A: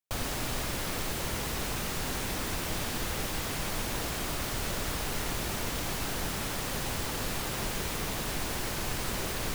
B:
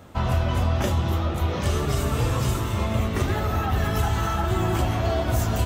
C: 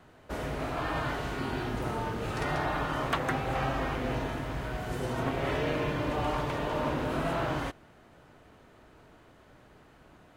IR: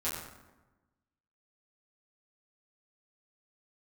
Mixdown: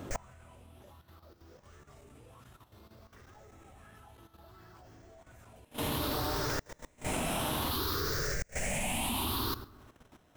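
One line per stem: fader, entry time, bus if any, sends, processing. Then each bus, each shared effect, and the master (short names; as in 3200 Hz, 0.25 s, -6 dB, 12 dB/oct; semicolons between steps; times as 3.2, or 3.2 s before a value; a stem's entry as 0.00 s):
-3.0 dB, 0.00 s, send -10.5 dB, moving spectral ripple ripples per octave 0.55, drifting +0.6 Hz, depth 19 dB
+1.5 dB, 0.00 s, no send, LFO bell 1.4 Hz 300–1700 Hz +11 dB
-0.5 dB, 0.00 s, send -18 dB, sample-rate reducer 4600 Hz, jitter 0%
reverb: on, RT60 1.1 s, pre-delay 6 ms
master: flipped gate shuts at -16 dBFS, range -34 dB; level quantiser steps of 11 dB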